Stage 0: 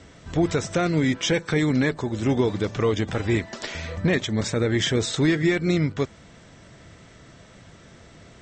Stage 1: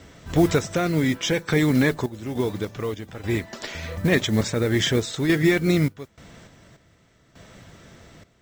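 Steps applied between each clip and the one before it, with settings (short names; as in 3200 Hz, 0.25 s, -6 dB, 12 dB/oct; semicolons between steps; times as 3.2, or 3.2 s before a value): modulation noise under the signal 24 dB; random-step tremolo 3.4 Hz, depth 85%; gain +3.5 dB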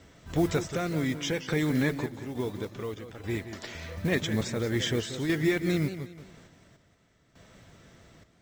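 warbling echo 0.18 s, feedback 34%, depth 139 cents, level -11 dB; gain -7.5 dB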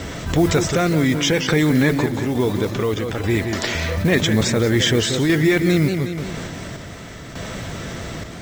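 fast leveller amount 50%; gain +8 dB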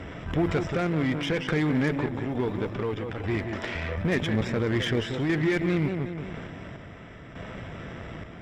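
polynomial smoothing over 25 samples; added harmonics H 8 -23 dB, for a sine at -5.5 dBFS; gain -8.5 dB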